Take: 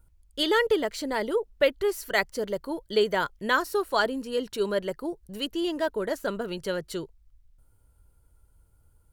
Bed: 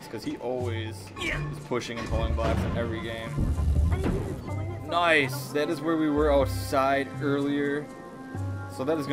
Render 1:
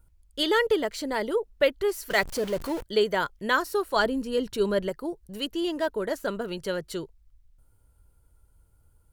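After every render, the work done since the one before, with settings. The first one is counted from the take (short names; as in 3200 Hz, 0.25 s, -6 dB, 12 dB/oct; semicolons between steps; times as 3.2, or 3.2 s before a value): 2.1–2.83 zero-crossing step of -33 dBFS; 3.96–4.89 low shelf 210 Hz +9.5 dB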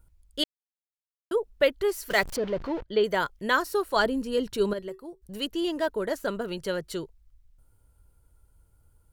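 0.44–1.31 mute; 2.36–3.04 air absorption 230 m; 4.73–5.22 resonator 380 Hz, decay 0.22 s, harmonics odd, mix 70%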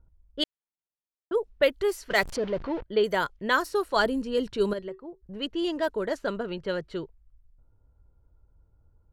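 low-pass opened by the level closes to 970 Hz, open at -21.5 dBFS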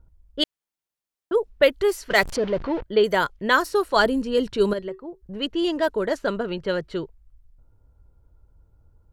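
gain +5 dB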